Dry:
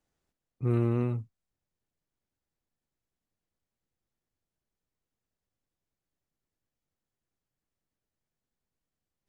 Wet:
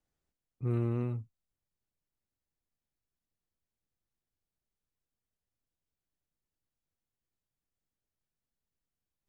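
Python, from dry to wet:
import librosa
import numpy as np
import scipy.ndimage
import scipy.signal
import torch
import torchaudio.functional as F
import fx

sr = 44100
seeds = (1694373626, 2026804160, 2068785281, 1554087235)

y = fx.low_shelf(x, sr, hz=99.0, db=5.5)
y = y * 10.0 ** (-6.0 / 20.0)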